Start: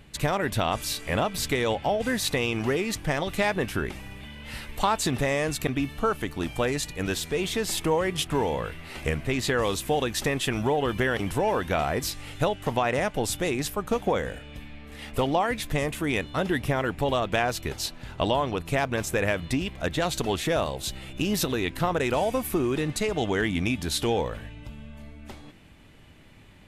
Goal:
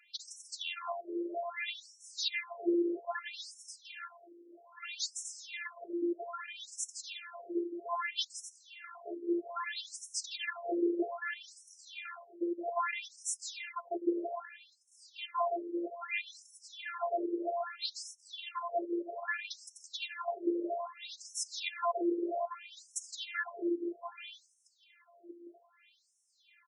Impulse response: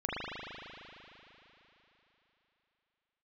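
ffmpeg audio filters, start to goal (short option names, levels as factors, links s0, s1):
-af "aecho=1:1:166.2|253.6:0.447|0.316,afftfilt=real='hypot(re,im)*cos(PI*b)':imag='0':win_size=512:overlap=0.75,afftfilt=real='re*between(b*sr/1024,380*pow(7600/380,0.5+0.5*sin(2*PI*0.62*pts/sr))/1.41,380*pow(7600/380,0.5+0.5*sin(2*PI*0.62*pts/sr))*1.41)':imag='im*between(b*sr/1024,380*pow(7600/380,0.5+0.5*sin(2*PI*0.62*pts/sr))/1.41,380*pow(7600/380,0.5+0.5*sin(2*PI*0.62*pts/sr))*1.41)':win_size=1024:overlap=0.75"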